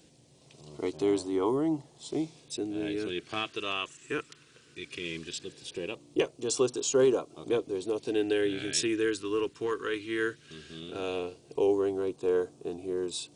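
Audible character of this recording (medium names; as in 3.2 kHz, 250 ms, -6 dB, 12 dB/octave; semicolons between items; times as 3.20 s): phasing stages 2, 0.18 Hz, lowest notch 730–1800 Hz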